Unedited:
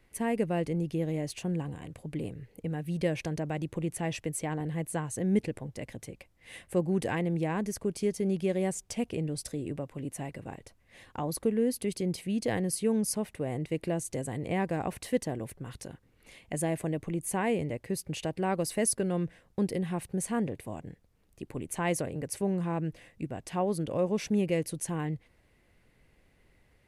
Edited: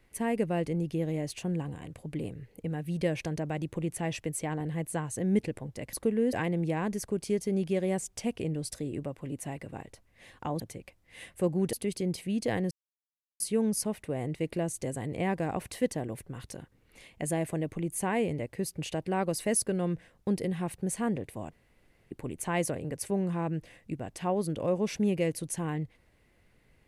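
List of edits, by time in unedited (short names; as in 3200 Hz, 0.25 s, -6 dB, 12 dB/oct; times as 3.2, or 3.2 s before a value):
5.93–7.06 swap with 11.33–11.73
12.71 insert silence 0.69 s
20.83–21.42 room tone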